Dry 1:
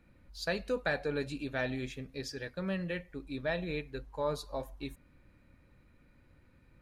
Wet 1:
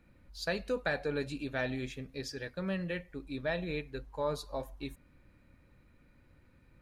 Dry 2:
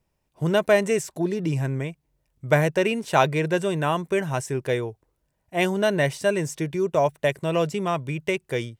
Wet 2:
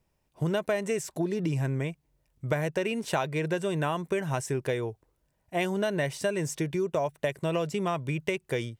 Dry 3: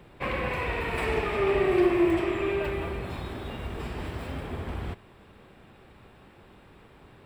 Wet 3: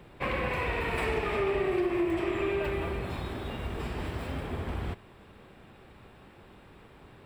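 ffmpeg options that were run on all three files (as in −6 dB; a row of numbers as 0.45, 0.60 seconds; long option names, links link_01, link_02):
-af "acompressor=threshold=-25dB:ratio=6"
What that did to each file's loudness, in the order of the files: 0.0, −6.0, −3.0 LU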